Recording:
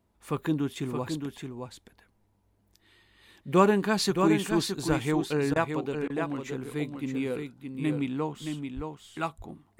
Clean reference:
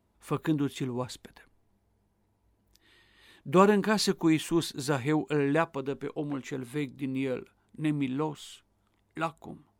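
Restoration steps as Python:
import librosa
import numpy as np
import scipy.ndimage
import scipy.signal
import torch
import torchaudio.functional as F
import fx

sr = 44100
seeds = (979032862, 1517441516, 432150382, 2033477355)

y = fx.highpass(x, sr, hz=140.0, slope=24, at=(4.88, 5.0), fade=0.02)
y = fx.highpass(y, sr, hz=140.0, slope=24, at=(8.75, 8.87), fade=0.02)
y = fx.fix_interpolate(y, sr, at_s=(5.54, 6.08), length_ms=18.0)
y = fx.fix_echo_inverse(y, sr, delay_ms=620, level_db=-6.0)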